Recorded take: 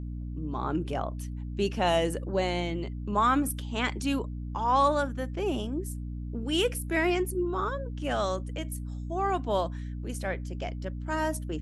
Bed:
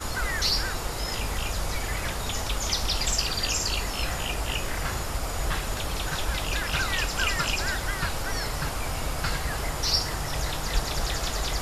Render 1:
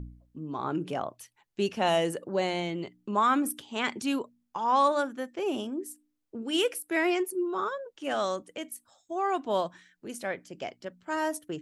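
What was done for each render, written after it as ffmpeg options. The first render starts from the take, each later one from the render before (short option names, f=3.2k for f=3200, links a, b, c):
-af "bandreject=f=60:t=h:w=4,bandreject=f=120:t=h:w=4,bandreject=f=180:t=h:w=4,bandreject=f=240:t=h:w=4,bandreject=f=300:t=h:w=4"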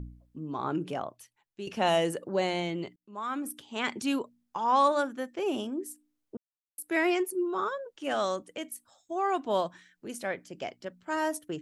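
-filter_complex "[0:a]asplit=5[a][b][c][d][e];[a]atrim=end=1.67,asetpts=PTS-STARTPTS,afade=t=out:st=0.74:d=0.93:silence=0.237137[f];[b]atrim=start=1.67:end=2.96,asetpts=PTS-STARTPTS,afade=t=in:d=0.004:c=hsin:silence=0.237137,afade=t=out:st=1.286:d=0.004:c=hsin[g];[c]atrim=start=2.96:end=6.37,asetpts=PTS-STARTPTS,afade=t=in:d=1.03,afade=t=out:st=3.406:d=0.004:c=hsin[h];[d]atrim=start=6.37:end=6.78,asetpts=PTS-STARTPTS,volume=0[i];[e]atrim=start=6.78,asetpts=PTS-STARTPTS,afade=t=in:d=0.004:c=hsin[j];[f][g][h][i][j]concat=n=5:v=0:a=1"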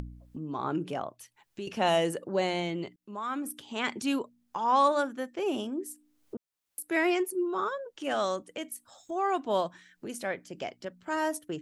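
-af "acompressor=mode=upward:threshold=-35dB:ratio=2.5"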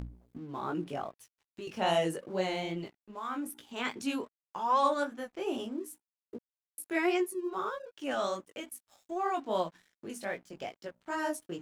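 -af "flanger=delay=16.5:depth=4.8:speed=2.5,aeval=exprs='sgn(val(0))*max(abs(val(0))-0.00112,0)':c=same"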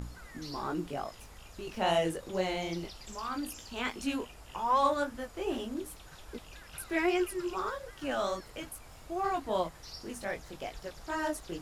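-filter_complex "[1:a]volume=-22dB[a];[0:a][a]amix=inputs=2:normalize=0"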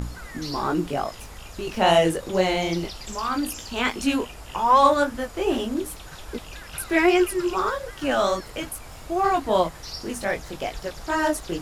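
-af "volume=10.5dB"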